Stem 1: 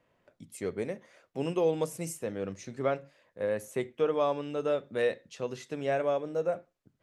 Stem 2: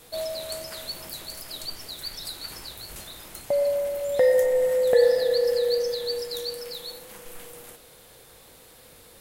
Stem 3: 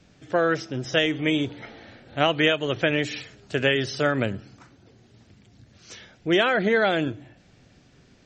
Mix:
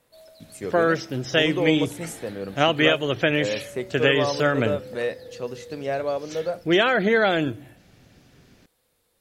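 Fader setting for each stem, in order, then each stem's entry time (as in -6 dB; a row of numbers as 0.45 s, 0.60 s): +2.5 dB, -19.0 dB, +1.5 dB; 0.00 s, 0.00 s, 0.40 s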